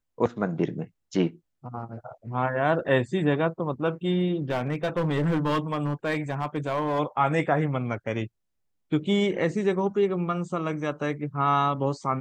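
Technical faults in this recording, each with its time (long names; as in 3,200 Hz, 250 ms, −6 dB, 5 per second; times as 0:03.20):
0:04.50–0:07.00: clipping −20.5 dBFS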